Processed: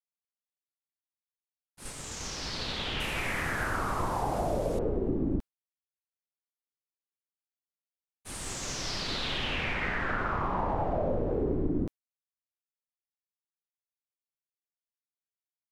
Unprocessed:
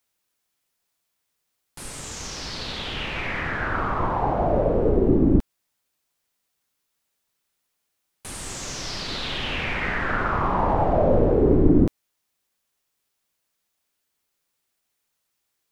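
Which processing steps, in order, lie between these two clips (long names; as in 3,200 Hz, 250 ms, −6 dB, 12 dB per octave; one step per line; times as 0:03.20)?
0:03.00–0:04.79: linear delta modulator 64 kbit/s, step −31 dBFS
downward compressor 4 to 1, threshold −28 dBFS, peak gain reduction 15 dB
downward expander −30 dBFS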